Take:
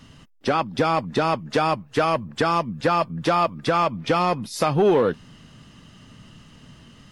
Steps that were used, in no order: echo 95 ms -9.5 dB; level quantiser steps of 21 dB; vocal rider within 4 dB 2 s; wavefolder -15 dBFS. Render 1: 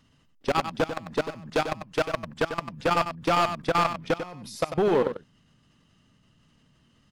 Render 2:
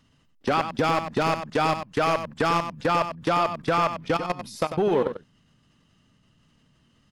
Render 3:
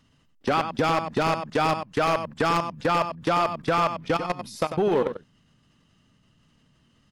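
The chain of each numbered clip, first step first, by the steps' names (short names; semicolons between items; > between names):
vocal rider > wavefolder > level quantiser > echo; vocal rider > level quantiser > wavefolder > echo; vocal rider > level quantiser > echo > wavefolder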